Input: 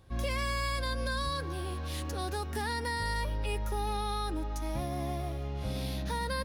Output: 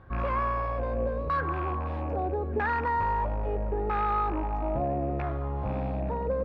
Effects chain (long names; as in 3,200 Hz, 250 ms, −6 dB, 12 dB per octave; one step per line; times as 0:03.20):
loose part that buzzes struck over −34 dBFS, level −27 dBFS
dynamic equaliser 1,700 Hz, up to +3 dB, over −44 dBFS, Q 0.71
soft clipping −31.5 dBFS, distortion −12 dB
auto-filter low-pass saw down 0.77 Hz 470–1,500 Hz
on a send: feedback echo with a band-pass in the loop 558 ms, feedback 75%, band-pass 2,000 Hz, level −22.5 dB
on the sum: level +6 dB